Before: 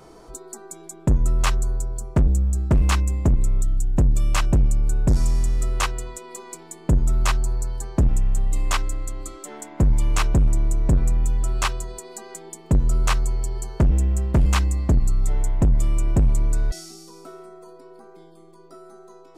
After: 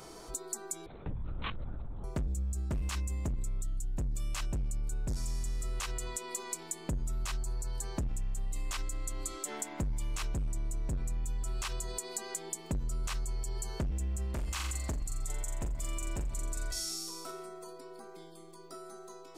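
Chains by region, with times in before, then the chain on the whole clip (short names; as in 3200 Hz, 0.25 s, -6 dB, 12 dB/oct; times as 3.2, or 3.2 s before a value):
0.86–2.04 LPC vocoder at 8 kHz whisper + compressor 2:1, threshold -40 dBFS
14.34–17.31 bell 140 Hz -8 dB 2.7 oct + flutter echo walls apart 7.3 m, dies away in 0.39 s
whole clip: high shelf 2100 Hz +10.5 dB; limiter -17 dBFS; compressor 6:1, threshold -28 dBFS; gain -4 dB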